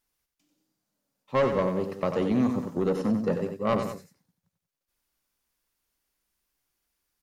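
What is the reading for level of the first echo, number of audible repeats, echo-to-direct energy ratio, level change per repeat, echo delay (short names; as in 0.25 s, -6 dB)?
-7.5 dB, 2, -6.5 dB, -5.5 dB, 92 ms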